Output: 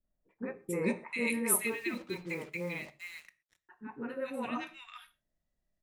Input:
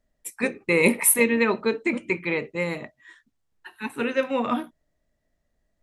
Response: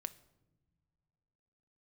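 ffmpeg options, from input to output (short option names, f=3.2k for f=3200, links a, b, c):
-filter_complex "[0:a]acrossover=split=490|1600[a][b][c];[b]adelay=40[d];[c]adelay=440[e];[a][d][e]amix=inputs=3:normalize=0,asettb=1/sr,asplit=3[f][g][h];[f]atrim=end=1.674[i];[g]atrim=start=1.67:end=3.69,asetpts=PTS-STARTPTS,afade=t=in:d=0.004:c=qsin,afade=t=out:st=2.016:d=0.004:c=qsin,acrusher=bits=6:mix=0:aa=0.5[j];[h]atrim=start=3.686[k];[i][j]acrossfade=d=0.004:c1=hsin:c2=qsin[l];[l][k]acrossfade=d=0.004:c1=qsin:c2=hsin[m];[1:a]atrim=start_sample=2205,atrim=end_sample=6174[n];[m][n]afir=irnorm=-1:irlink=0,volume=-7dB"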